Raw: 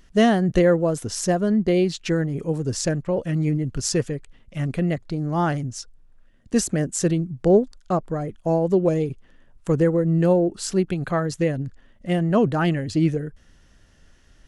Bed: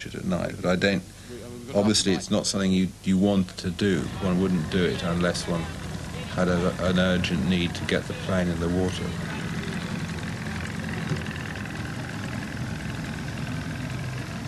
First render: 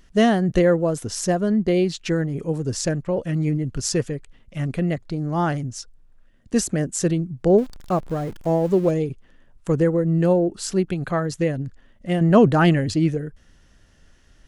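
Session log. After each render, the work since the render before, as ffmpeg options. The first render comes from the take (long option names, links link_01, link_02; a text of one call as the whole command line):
ffmpeg -i in.wav -filter_complex "[0:a]asettb=1/sr,asplit=3[link_01][link_02][link_03];[link_01]atrim=end=7.584[link_04];[link_02]atrim=start=7.58:end=8.91,asetpts=PTS-STARTPTS,afade=type=in:duration=0.004:curve=qsin,afade=type=out:start_time=1.326:duration=0.004:curve=qsin,aeval=exprs='val(0)+0.5*0.0158*sgn(val(0))':channel_layout=same[link_05];[link_03]atrim=start=8.906[link_06];[link_04][link_05]acrossfade=duration=0.004:curve1=hsin:curve2=qsin[link_07];[link_07][link_06]acrossfade=duration=0.004:curve1=qsin:curve2=hsin,asplit=3[link_08][link_09][link_10];[link_08]atrim=end=12.212[link_11];[link_09]atrim=start=12.208:end=12.942,asetpts=PTS-STARTPTS,volume=5dB[link_12];[link_10]atrim=start=12.938[link_13];[link_11][link_12]acrossfade=duration=0.004:curve1=hsin:curve2=hsin[link_14];[link_14][link_13]acrossfade=duration=0.004:curve1=hsin:curve2=hsin" out.wav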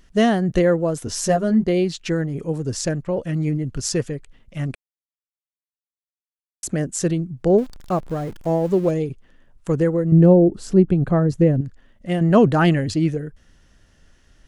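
ffmpeg -i in.wav -filter_complex "[0:a]asettb=1/sr,asplit=3[link_01][link_02][link_03];[link_01]atrim=end=1.064[link_04];[link_02]atrim=start=1.06:end=1.64,asetpts=PTS-STARTPTS,afade=type=in:duration=0.004:curve=qsin,afade=type=out:start_time=0.576:duration=0.004:curve=qsin,asplit=2[link_05][link_06];[link_06]adelay=13,volume=-2dB[link_07];[link_05][link_07]amix=inputs=2:normalize=0,atrim=end_sample=25578[link_08];[link_03]atrim=start=1.636[link_09];[link_04][link_08]acrossfade=duration=0.004:curve1=hsin:curve2=qsin[link_10];[link_10][link_09]acrossfade=duration=0.004:curve1=qsin:curve2=hsin,asettb=1/sr,asplit=3[link_11][link_12][link_13];[link_11]atrim=end=10.124[link_14];[link_12]atrim=start=10.12:end=11.61,asetpts=PTS-STARTPTS,afade=type=in:duration=0.004:curve=qsin,afade=type=out:start_time=1.486:duration=0.004:curve=qsin,tiltshelf=frequency=850:gain=9[link_15];[link_13]atrim=start=11.606[link_16];[link_14][link_15]acrossfade=duration=0.004:curve1=hsin:curve2=qsin[link_17];[link_17][link_16]acrossfade=duration=0.004:curve1=qsin:curve2=hsin,asplit=3[link_18][link_19][link_20];[link_18]atrim=end=4.75,asetpts=PTS-STARTPTS,afade=type=out:start_time=4.746:duration=0.004:curve=hsin[link_21];[link_19]atrim=start=4.75:end=6.63,asetpts=PTS-STARTPTS,volume=0[link_22];[link_20]atrim=start=6.63,asetpts=PTS-STARTPTS,afade=type=in:duration=0.004:curve=hsin[link_23];[link_21][link_22][link_23]concat=n=3:v=0:a=1" out.wav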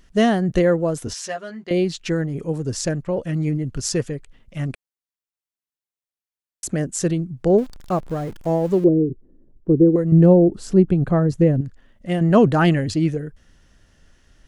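ffmpeg -i in.wav -filter_complex "[0:a]asettb=1/sr,asplit=3[link_01][link_02][link_03];[link_01]atrim=end=1.134[link_04];[link_02]atrim=start=1.13:end=1.71,asetpts=PTS-STARTPTS,afade=type=in:duration=0.004:curve=qsin,afade=type=out:start_time=0.576:duration=0.004:curve=qsin,bandpass=frequency=2600:width_type=q:width=0.75[link_05];[link_03]atrim=start=1.706[link_06];[link_04][link_05]acrossfade=duration=0.004:curve1=hsin:curve2=qsin[link_07];[link_07][link_06]acrossfade=duration=0.004:curve1=qsin:curve2=hsin,asettb=1/sr,asplit=3[link_08][link_09][link_10];[link_08]atrim=end=8.844[link_11];[link_09]atrim=start=8.84:end=9.96,asetpts=PTS-STARTPTS,afade=type=in:duration=0.004:curve=qsin,afade=type=out:start_time=1.116:duration=0.004:curve=qsin,lowpass=frequency=350:width_type=q:width=3[link_12];[link_10]atrim=start=9.956[link_13];[link_11][link_12]acrossfade=duration=0.004:curve1=hsin:curve2=qsin[link_14];[link_14][link_13]acrossfade=duration=0.004:curve1=qsin:curve2=hsin" out.wav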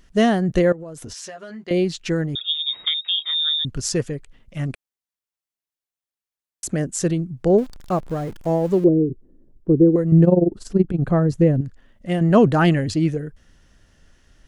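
ffmpeg -i in.wav -filter_complex "[0:a]asettb=1/sr,asplit=3[link_01][link_02][link_03];[link_01]atrim=end=0.724[link_04];[link_02]atrim=start=0.72:end=1.63,asetpts=PTS-STARTPTS,afade=type=in:duration=0.004:curve=qsin,afade=type=out:start_time=0.906:duration=0.004:curve=qsin,acompressor=threshold=-31dB:ratio=16:attack=3.2:release=140:knee=1:detection=peak[link_05];[link_03]atrim=start=1.626[link_06];[link_04][link_05]acrossfade=duration=0.004:curve1=hsin:curve2=qsin[link_07];[link_07][link_06]acrossfade=duration=0.004:curve1=qsin:curve2=hsin,asettb=1/sr,asplit=3[link_08][link_09][link_10];[link_08]atrim=end=2.354[link_11];[link_09]atrim=start=2.35:end=3.65,asetpts=PTS-STARTPTS,afade=type=in:duration=0.004:curve=qsin,afade=type=out:start_time=1.296:duration=0.004:curve=qsin,lowpass=frequency=3200:width_type=q:width=0.5098,lowpass=frequency=3200:width_type=q:width=0.6013,lowpass=frequency=3200:width_type=q:width=0.9,lowpass=frequency=3200:width_type=q:width=2.563,afreqshift=-3800[link_12];[link_10]atrim=start=3.646[link_13];[link_11][link_12]acrossfade=duration=0.004:curve1=hsin:curve2=qsin[link_14];[link_14][link_13]acrossfade=duration=0.004:curve1=qsin:curve2=hsin,asplit=3[link_15][link_16][link_17];[link_15]afade=type=out:start_time=10.23:duration=0.02[link_18];[link_16]tremolo=f=21:d=0.824,afade=type=in:start_time=10.23:duration=0.02,afade=type=out:start_time=11:duration=0.02[link_19];[link_17]afade=type=in:start_time=11:duration=0.02[link_20];[link_18][link_19][link_20]amix=inputs=3:normalize=0" out.wav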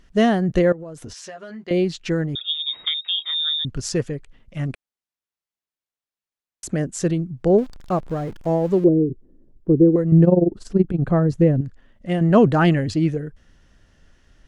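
ffmpeg -i in.wav -af "highshelf=frequency=7300:gain=-9" out.wav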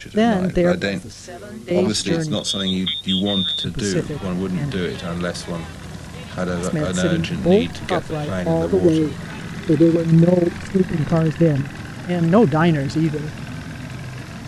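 ffmpeg -i in.wav -i bed.wav -filter_complex "[1:a]volume=0dB[link_01];[0:a][link_01]amix=inputs=2:normalize=0" out.wav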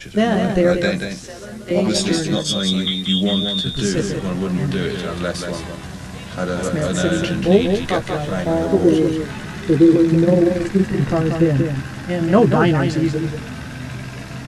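ffmpeg -i in.wav -filter_complex "[0:a]asplit=2[link_01][link_02];[link_02]adelay=15,volume=-6dB[link_03];[link_01][link_03]amix=inputs=2:normalize=0,aecho=1:1:184:0.501" out.wav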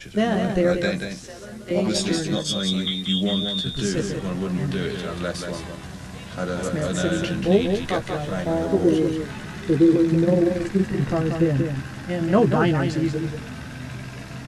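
ffmpeg -i in.wav -af "volume=-4.5dB" out.wav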